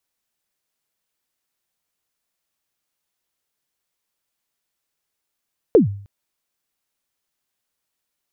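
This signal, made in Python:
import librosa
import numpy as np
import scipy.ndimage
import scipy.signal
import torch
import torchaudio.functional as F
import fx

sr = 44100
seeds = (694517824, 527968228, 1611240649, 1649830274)

y = fx.drum_kick(sr, seeds[0], length_s=0.31, level_db=-5.0, start_hz=510.0, end_hz=100.0, sweep_ms=126.0, decay_s=0.51, click=False)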